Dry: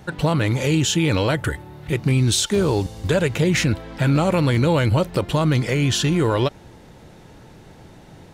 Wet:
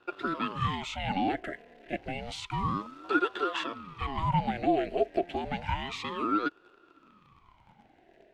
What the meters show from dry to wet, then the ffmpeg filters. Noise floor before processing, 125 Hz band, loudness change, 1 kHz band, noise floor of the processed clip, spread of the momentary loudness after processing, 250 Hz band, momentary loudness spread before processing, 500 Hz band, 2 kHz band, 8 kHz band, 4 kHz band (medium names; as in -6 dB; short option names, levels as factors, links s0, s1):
-46 dBFS, -19.0 dB, -11.5 dB, -2.0 dB, -62 dBFS, 9 LU, -12.5 dB, 6 LU, -12.0 dB, -9.0 dB, -26.5 dB, -14.0 dB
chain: -filter_complex "[0:a]acrossover=split=340|3000[s0][s1][s2];[s1]acompressor=threshold=0.0794:ratio=2[s3];[s0][s3][s2]amix=inputs=3:normalize=0,asplit=2[s4][s5];[s5]acrusher=bits=5:mix=0:aa=0.000001,volume=0.596[s6];[s4][s6]amix=inputs=2:normalize=0,asplit=3[s7][s8][s9];[s7]bandpass=f=530:t=q:w=8,volume=1[s10];[s8]bandpass=f=1840:t=q:w=8,volume=0.501[s11];[s9]bandpass=f=2480:t=q:w=8,volume=0.355[s12];[s10][s11][s12]amix=inputs=3:normalize=0,aeval=exprs='val(0)*sin(2*PI*510*n/s+510*0.75/0.3*sin(2*PI*0.3*n/s))':c=same"